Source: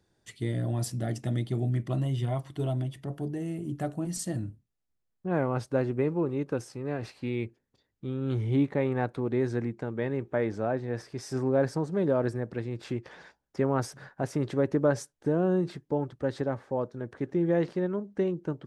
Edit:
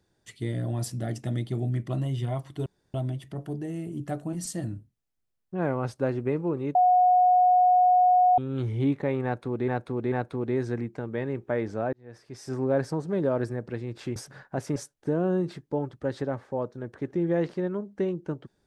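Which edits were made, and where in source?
0:02.66: splice in room tone 0.28 s
0:06.47–0:08.10: beep over 728 Hz −16 dBFS
0:08.96–0:09.40: repeat, 3 plays
0:10.77–0:11.49: fade in
0:13.00–0:13.82: remove
0:14.42–0:14.95: remove

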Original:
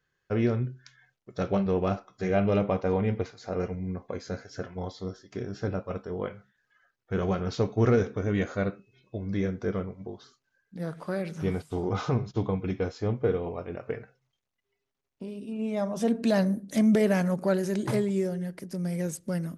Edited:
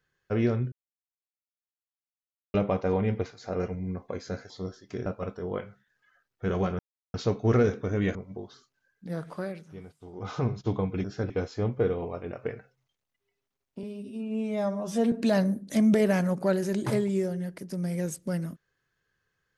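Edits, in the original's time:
0:00.72–0:02.54: silence
0:04.50–0:04.92: remove
0:05.48–0:05.74: move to 0:12.74
0:07.47: splice in silence 0.35 s
0:08.48–0:09.85: remove
0:11.01–0:12.20: duck −15.5 dB, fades 0.37 s
0:15.27–0:16.13: time-stretch 1.5×

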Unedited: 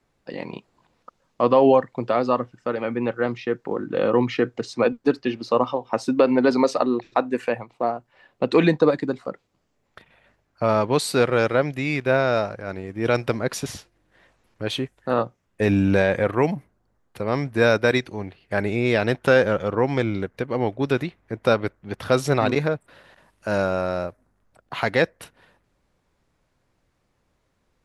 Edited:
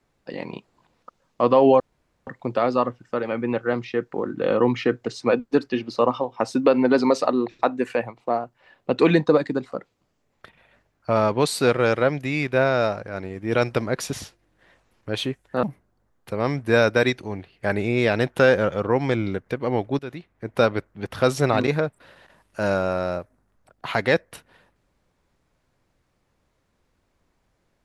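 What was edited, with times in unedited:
0:01.80: splice in room tone 0.47 s
0:15.16–0:16.51: remove
0:20.87–0:21.48: fade in, from −18 dB

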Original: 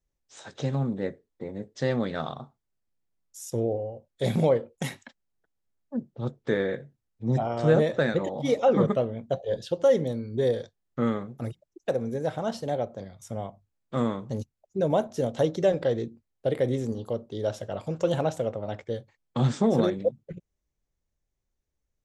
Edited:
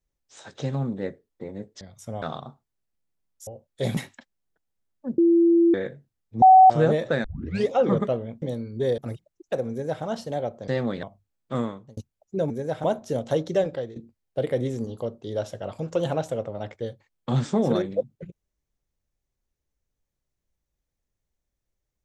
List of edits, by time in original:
0:01.81–0:02.16: swap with 0:13.04–0:13.45
0:03.41–0:03.88: remove
0:04.38–0:04.85: remove
0:06.06–0:06.62: beep over 338 Hz −14 dBFS
0:07.30–0:07.58: beep over 754 Hz −8 dBFS
0:08.12: tape start 0.45 s
0:09.30–0:10.00: remove
0:10.56–0:11.34: remove
0:12.06–0:12.40: duplicate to 0:14.92
0:13.98–0:14.39: fade out
0:15.67–0:16.04: fade out, to −15.5 dB

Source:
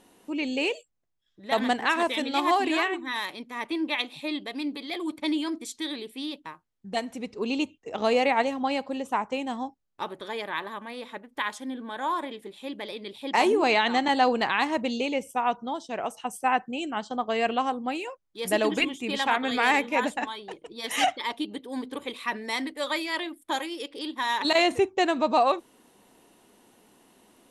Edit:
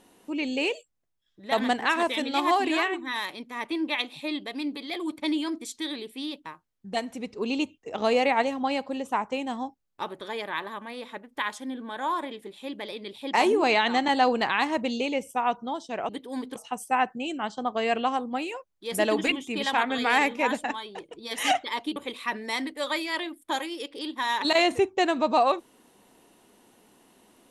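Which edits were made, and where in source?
0:21.49–0:21.96: move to 0:16.09

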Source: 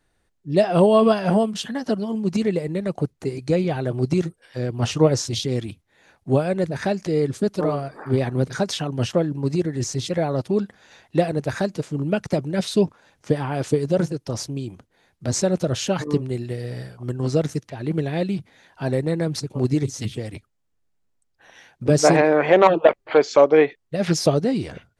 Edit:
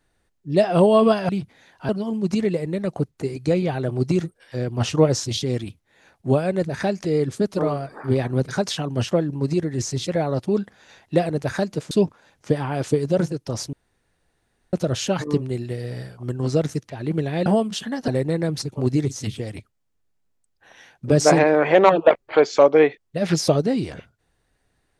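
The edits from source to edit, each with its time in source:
0:01.29–0:01.91: swap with 0:18.26–0:18.86
0:11.93–0:12.71: remove
0:14.53–0:15.53: fill with room tone

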